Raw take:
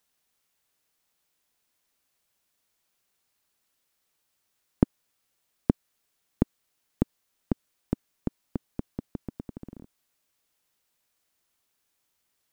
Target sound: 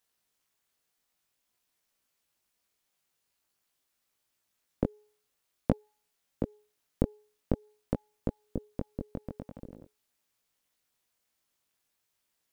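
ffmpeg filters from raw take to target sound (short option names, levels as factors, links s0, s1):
-af "tremolo=f=260:d=1,bandreject=f=421.7:t=h:w=4,bandreject=f=843.4:t=h:w=4,flanger=delay=17.5:depth=3.6:speed=0.49,volume=1.58"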